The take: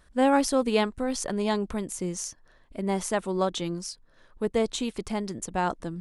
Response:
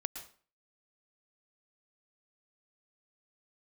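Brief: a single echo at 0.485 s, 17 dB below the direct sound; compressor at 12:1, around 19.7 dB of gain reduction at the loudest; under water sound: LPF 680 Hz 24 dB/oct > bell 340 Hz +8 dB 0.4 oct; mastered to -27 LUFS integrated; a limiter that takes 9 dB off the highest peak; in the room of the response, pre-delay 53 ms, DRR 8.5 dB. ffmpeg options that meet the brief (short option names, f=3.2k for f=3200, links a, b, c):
-filter_complex "[0:a]acompressor=threshold=-37dB:ratio=12,alimiter=level_in=7.5dB:limit=-24dB:level=0:latency=1,volume=-7.5dB,aecho=1:1:485:0.141,asplit=2[a][b];[1:a]atrim=start_sample=2205,adelay=53[c];[b][c]afir=irnorm=-1:irlink=0,volume=-8.5dB[d];[a][d]amix=inputs=2:normalize=0,lowpass=f=680:w=0.5412,lowpass=f=680:w=1.3066,equalizer=f=340:t=o:w=0.4:g=8,volume=14.5dB"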